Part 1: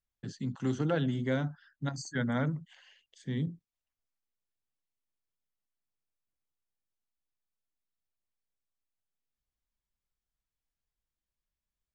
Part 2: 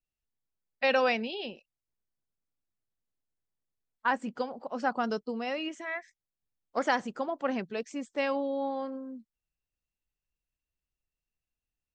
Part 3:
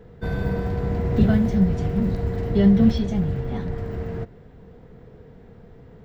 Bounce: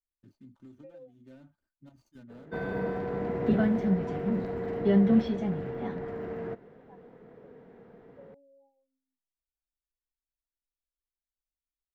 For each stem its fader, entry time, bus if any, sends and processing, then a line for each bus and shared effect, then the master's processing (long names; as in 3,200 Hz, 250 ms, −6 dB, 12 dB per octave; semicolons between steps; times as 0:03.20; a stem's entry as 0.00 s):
−18.0 dB, 0.00 s, bus A, no send, running median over 25 samples; low-shelf EQ 140 Hz +7 dB; comb filter 3.3 ms, depth 62%
−15.0 dB, 0.00 s, bus A, no send, every bin expanded away from the loudest bin 4 to 1
−2.0 dB, 2.30 s, no bus, no send, three-way crossover with the lows and the highs turned down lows −22 dB, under 190 Hz, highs −13 dB, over 2,700 Hz
bus A: 0.0 dB, downward compressor 12 to 1, threshold −47 dBFS, peak gain reduction 17 dB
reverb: not used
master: no processing